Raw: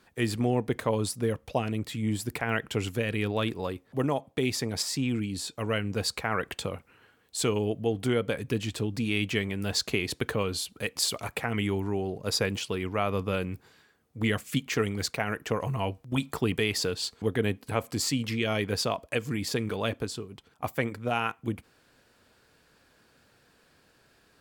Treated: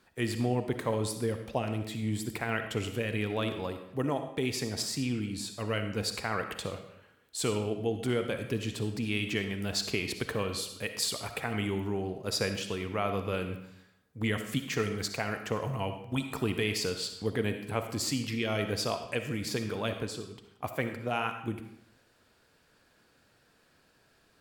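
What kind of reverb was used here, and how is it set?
comb and all-pass reverb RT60 0.76 s, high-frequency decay 0.9×, pre-delay 20 ms, DRR 7 dB
level −3.5 dB

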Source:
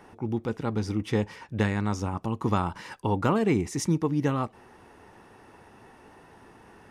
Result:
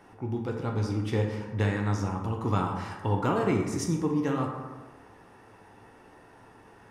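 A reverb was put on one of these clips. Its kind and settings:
dense smooth reverb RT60 1.3 s, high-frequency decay 0.45×, pre-delay 0 ms, DRR 0.5 dB
level −4 dB

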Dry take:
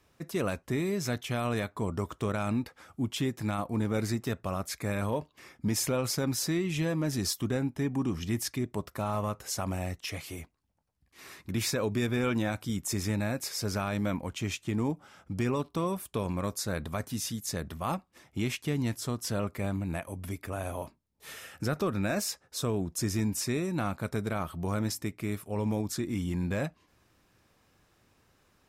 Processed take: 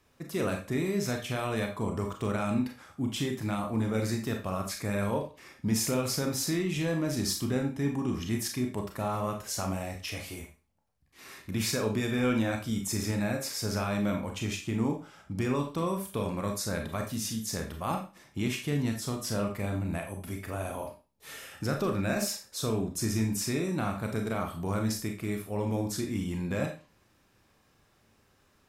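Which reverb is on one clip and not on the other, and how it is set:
four-comb reverb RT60 0.33 s, combs from 28 ms, DRR 3 dB
level −1 dB

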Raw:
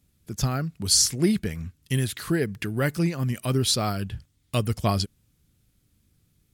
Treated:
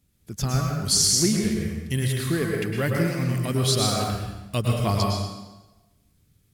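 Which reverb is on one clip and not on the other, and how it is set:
dense smooth reverb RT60 1.1 s, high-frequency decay 0.85×, pre-delay 95 ms, DRR −1 dB
level −1.5 dB

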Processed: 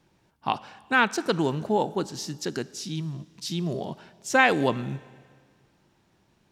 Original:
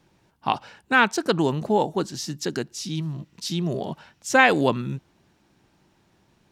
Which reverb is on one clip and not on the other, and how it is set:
four-comb reverb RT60 1.8 s, combs from 29 ms, DRR 18.5 dB
level −3 dB

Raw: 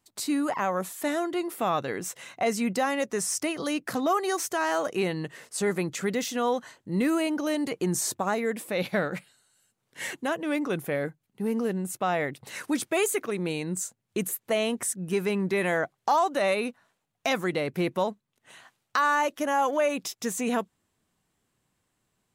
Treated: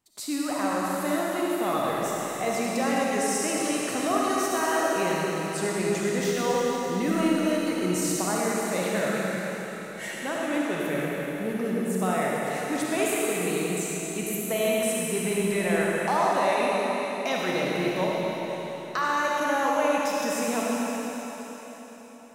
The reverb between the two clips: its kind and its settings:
comb and all-pass reverb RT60 4.3 s, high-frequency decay 1×, pre-delay 15 ms, DRR −5 dB
level −4 dB

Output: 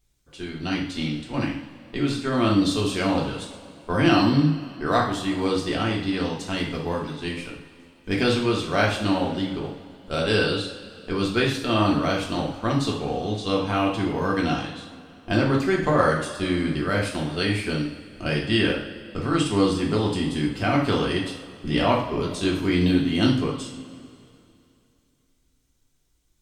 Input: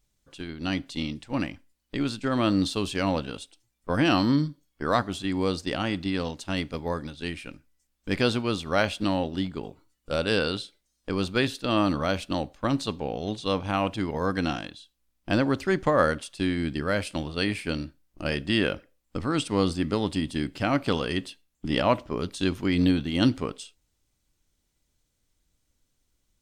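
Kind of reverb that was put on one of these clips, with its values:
coupled-rooms reverb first 0.5 s, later 2.7 s, from −17 dB, DRR −2.5 dB
level −1 dB

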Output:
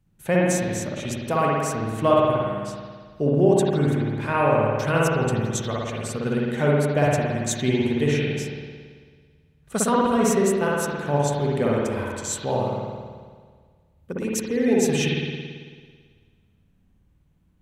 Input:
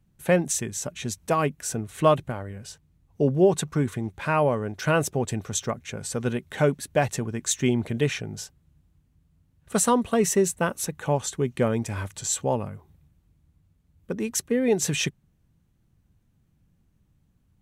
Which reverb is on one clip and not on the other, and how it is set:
spring reverb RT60 1.7 s, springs 55 ms, chirp 30 ms, DRR −4.5 dB
level −2.5 dB

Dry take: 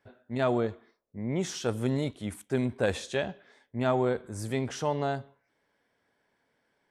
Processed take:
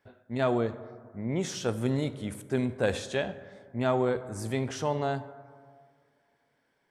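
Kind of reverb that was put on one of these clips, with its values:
dense smooth reverb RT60 2 s, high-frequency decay 0.35×, DRR 13 dB

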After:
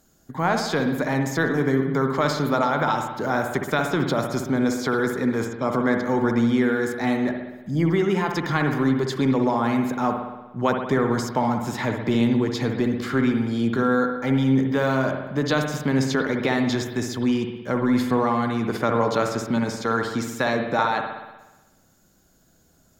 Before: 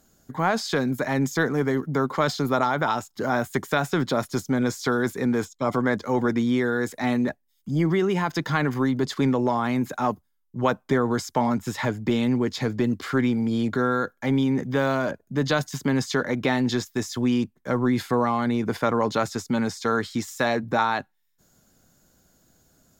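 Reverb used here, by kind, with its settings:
spring reverb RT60 1.1 s, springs 60 ms, chirp 55 ms, DRR 4 dB

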